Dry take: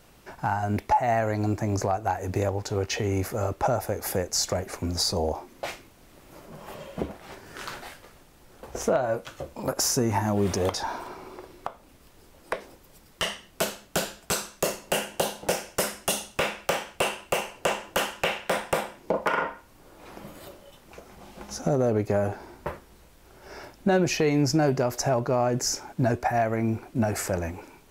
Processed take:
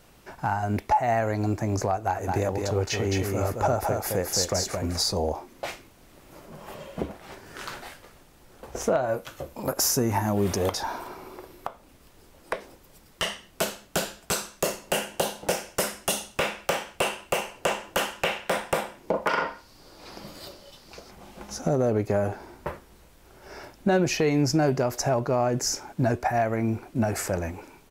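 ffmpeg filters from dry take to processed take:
-filter_complex "[0:a]asplit=3[a][b][c];[a]afade=t=out:st=2.15:d=0.02[d];[b]aecho=1:1:217:0.631,afade=t=in:st=2.15:d=0.02,afade=t=out:st=4.99:d=0.02[e];[c]afade=t=in:st=4.99:d=0.02[f];[d][e][f]amix=inputs=3:normalize=0,asettb=1/sr,asplit=3[g][h][i];[g]atrim=end=9.084[j];[h]atrim=start=9.08:end=11.68,asetpts=PTS-STARTPTS,afade=t=in:d=0.004:c=qsin,afade=t=out:st=2.596:d=0.004:c=qsin,equalizer=f=13k:w=1.7:g=8.5[k];[i]atrim=start=11.676[l];[j][k]acrossfade=d=0.004:c1=hsin:c2=qsin[m];[m][l]acrossfade=d=0.004:c1=qsin:c2=hsin,asettb=1/sr,asplit=3[n][o][p];[n]atrim=end=19.294[q];[o]atrim=start=19.29:end=21.11,asetpts=PTS-STARTPTS,afade=t=in:d=0.004:c=qsin,afade=t=out:st=1.816:d=0.004:c=qsin,equalizer=f=4.7k:w=2.1:g=14.5[r];[p]atrim=start=21.106[s];[q][r]acrossfade=d=0.004:c1=hsin:c2=qsin[t];[t][s]acrossfade=d=0.004:c1=qsin:c2=hsin"

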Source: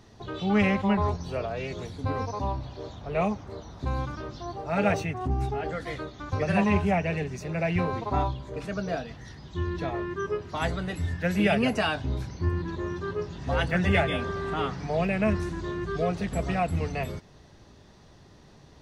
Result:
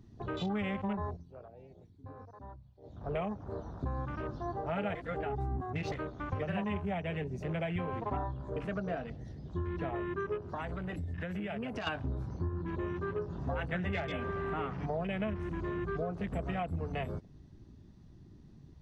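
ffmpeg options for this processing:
-filter_complex "[0:a]asettb=1/sr,asplit=3[a][b][c];[a]atrim=end=10.384[d];[b]atrim=start=10.38:end=11.87,asetpts=PTS-STARTPTS,afade=t=in:d=0.004:c=qsin,afade=t=out:st=1.486:d=0.004:c=qsin,acompressor=threshold=-33dB:ratio=12:attack=3.2:release=140:knee=1:detection=peak[e];[c]atrim=start=11.866[f];[d][e]acrossfade=d=0.004:c1=hsin:c2=qsin[g];[g][f]acrossfade=d=0.004:c1=qsin:c2=hsin,asplit=5[h][i][j][k][l];[h]atrim=end=1.26,asetpts=PTS-STARTPTS,afade=t=out:st=0.95:d=0.31:silence=0.112202[m];[i]atrim=start=1.26:end=2.81,asetpts=PTS-STARTPTS,volume=-19dB[n];[j]atrim=start=2.81:end=4.952,asetpts=PTS-STARTPTS,afade=t=in:d=0.31:silence=0.112202[o];[k]atrim=start=4.948:end=5.922,asetpts=PTS-STARTPTS,areverse[p];[l]atrim=start=5.918[q];[m][n][o]concat=n=3:v=0:a=1[r];[r][p]acrossfade=d=0.004:c1=hsin:c2=hsin[s];[s][q]acrossfade=d=0.004:c1=hsin:c2=hsin,acompressor=threshold=-32dB:ratio=6,afwtdn=0.00501"

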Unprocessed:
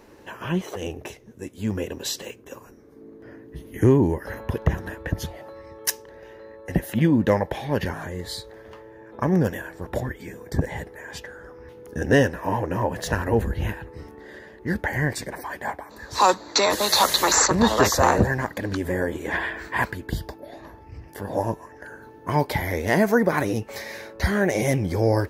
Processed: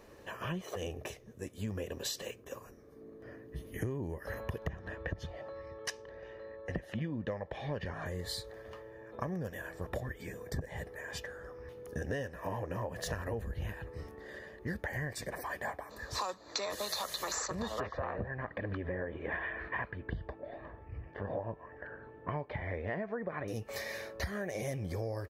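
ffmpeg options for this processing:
-filter_complex "[0:a]asettb=1/sr,asplit=3[a][b][c];[a]atrim=end=4.694[d];[b]atrim=start=4.69:end=8.06,asetpts=PTS-STARTPTS,afade=t=in:d=0.004:c=qsin,afade=t=out:st=3.366:d=0.004:c=qsin,lowpass=4.4k[e];[c]atrim=start=8.056[f];[d][e]acrossfade=d=0.004:c1=hsin:c2=qsin[g];[g][f]acrossfade=d=0.004:c1=qsin:c2=hsin,asettb=1/sr,asplit=3[h][i][j];[h]atrim=end=17.804[k];[i]atrim=start=17.8:end=23.48,asetpts=PTS-STARTPTS,afade=t=in:d=0.004:c=qsin,afade=t=out:st=5.676:d=0.004:c=qsin,lowpass=f=2.7k:w=0.5412,lowpass=f=2.7k:w=1.3066[l];[j]atrim=start=23.476[m];[k][l]acrossfade=d=0.004:c1=hsin:c2=qsin[n];[n][m]acrossfade=d=0.004:c1=qsin:c2=hsin,aecho=1:1:1.7:0.36,acompressor=threshold=-28dB:ratio=12,volume=-5.5dB"

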